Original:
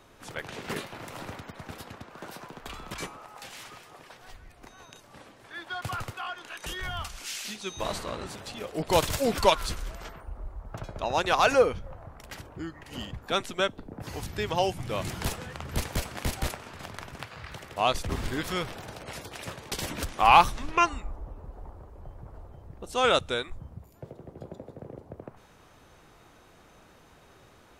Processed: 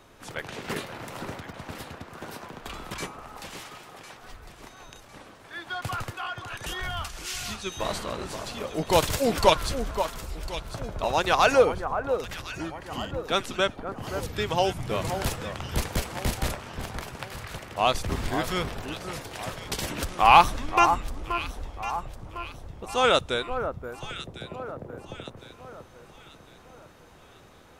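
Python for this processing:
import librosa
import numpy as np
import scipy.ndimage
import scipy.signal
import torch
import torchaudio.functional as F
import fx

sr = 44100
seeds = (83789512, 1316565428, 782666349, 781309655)

y = fx.echo_alternate(x, sr, ms=527, hz=1500.0, feedback_pct=64, wet_db=-8)
y = y * librosa.db_to_amplitude(2.0)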